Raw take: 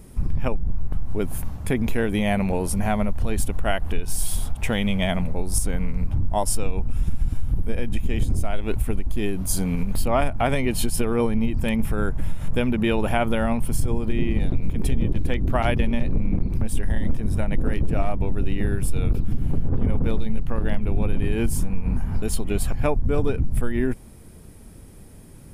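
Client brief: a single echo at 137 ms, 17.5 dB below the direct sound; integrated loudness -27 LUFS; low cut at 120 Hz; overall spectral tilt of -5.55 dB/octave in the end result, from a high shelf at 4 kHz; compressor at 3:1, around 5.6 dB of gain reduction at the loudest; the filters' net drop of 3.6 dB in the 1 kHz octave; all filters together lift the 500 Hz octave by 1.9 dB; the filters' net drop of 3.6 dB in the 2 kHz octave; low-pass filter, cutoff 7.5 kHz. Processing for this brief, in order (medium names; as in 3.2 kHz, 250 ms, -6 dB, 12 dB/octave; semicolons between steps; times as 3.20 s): high-pass 120 Hz; low-pass 7.5 kHz; peaking EQ 500 Hz +4.5 dB; peaking EQ 1 kHz -8 dB; peaking EQ 2 kHz -3.5 dB; treble shelf 4 kHz +4.5 dB; compression 3:1, threshold -25 dBFS; delay 137 ms -17.5 dB; trim +3 dB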